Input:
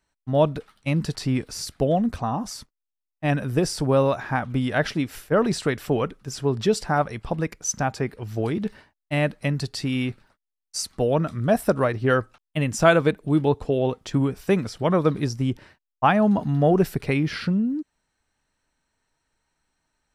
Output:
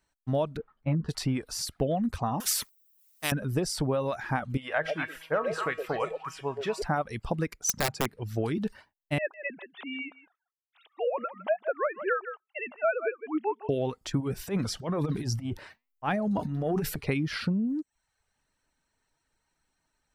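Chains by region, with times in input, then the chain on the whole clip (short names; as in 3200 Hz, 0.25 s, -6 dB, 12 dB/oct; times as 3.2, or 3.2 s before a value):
0.57–1.09 LPF 1200 Hz + doubler 13 ms -2.5 dB
2.4–3.32 tilt +4.5 dB/oct + spectral compressor 2:1
4.57–6.82 band shelf 1200 Hz +13 dB 2.9 oct + resonator 160 Hz, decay 0.94 s, mix 80% + delay with a stepping band-pass 0.118 s, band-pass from 470 Hz, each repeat 1.4 oct, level -2 dB
7.6–8.25 notches 50/100/150/200 Hz + wrapped overs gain 16.5 dB
9.18–13.69 sine-wave speech + HPF 590 Hz + echo 0.158 s -13 dB
14.2–17 transient shaper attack -12 dB, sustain +10 dB + flange 1.1 Hz, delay 6.2 ms, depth 4.8 ms, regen +85%
whole clip: compressor 5:1, threshold -22 dBFS; high shelf 11000 Hz +4 dB; reverb removal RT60 0.51 s; gain -1.5 dB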